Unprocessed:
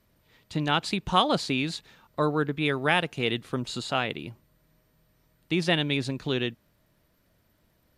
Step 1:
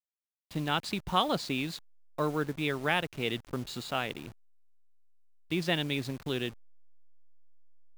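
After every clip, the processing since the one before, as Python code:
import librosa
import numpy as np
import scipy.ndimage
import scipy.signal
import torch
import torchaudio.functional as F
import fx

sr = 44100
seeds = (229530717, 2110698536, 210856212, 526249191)

y = fx.delta_hold(x, sr, step_db=-38.5)
y = F.gain(torch.from_numpy(y), -5.0).numpy()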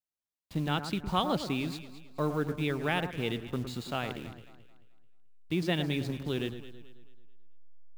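y = fx.low_shelf(x, sr, hz=380.0, db=7.0)
y = fx.echo_alternate(y, sr, ms=109, hz=1700.0, feedback_pct=60, wet_db=-9)
y = F.gain(torch.from_numpy(y), -3.5).numpy()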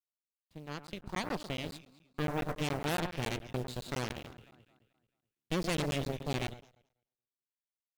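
y = fx.fade_in_head(x, sr, length_s=2.52)
y = fx.cheby_harmonics(y, sr, harmonics=(8,), levels_db=(-9,), full_scale_db=-16.0)
y = fx.buffer_crackle(y, sr, first_s=0.87, period_s=0.14, block=512, kind='zero')
y = F.gain(torch.from_numpy(y), -6.0).numpy()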